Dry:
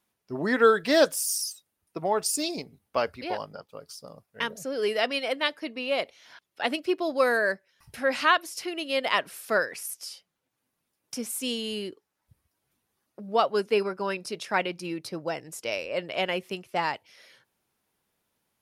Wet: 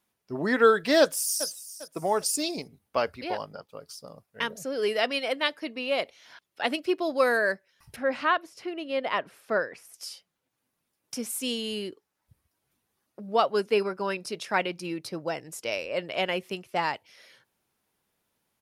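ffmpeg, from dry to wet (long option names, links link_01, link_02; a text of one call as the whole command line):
ffmpeg -i in.wav -filter_complex "[0:a]asplit=2[link_01][link_02];[link_02]afade=type=in:start_time=1:duration=0.01,afade=type=out:start_time=1.47:duration=0.01,aecho=0:1:400|800|1200:0.188365|0.0659277|0.0230747[link_03];[link_01][link_03]amix=inputs=2:normalize=0,asettb=1/sr,asplit=3[link_04][link_05][link_06];[link_04]atrim=end=7.964[link_07];[link_05]atrim=start=7.96:end=9.94,asetpts=PTS-STARTPTS,afade=type=in:duration=0.004:curve=qsin,afade=type=out:start_time=1.976:duration=0.004:curve=qsin,lowpass=frequency=1300:poles=1[link_08];[link_06]atrim=start=9.936[link_09];[link_07][link_08]acrossfade=duration=0.004:curve1=hsin:curve2=qsin[link_10];[link_10][link_09]acrossfade=duration=0.004:curve1=qsin:curve2=hsin" out.wav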